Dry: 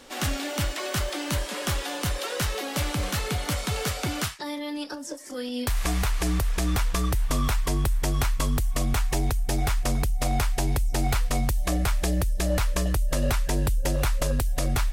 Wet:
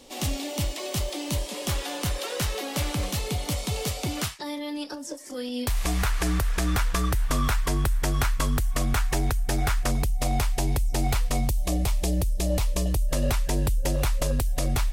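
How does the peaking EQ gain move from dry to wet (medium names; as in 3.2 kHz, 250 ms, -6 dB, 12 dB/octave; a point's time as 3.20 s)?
peaking EQ 1.5 kHz 0.76 oct
-14.5 dB
from 1.69 s -4.5 dB
from 3.06 s -12.5 dB
from 4.17 s -4 dB
from 5.99 s +4.5 dB
from 9.91 s -4 dB
from 11.48 s -14 dB
from 13.09 s -4 dB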